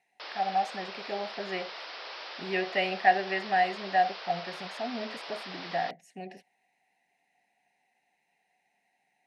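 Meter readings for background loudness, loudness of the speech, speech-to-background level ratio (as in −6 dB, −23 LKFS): −40.5 LKFS, −30.5 LKFS, 10.0 dB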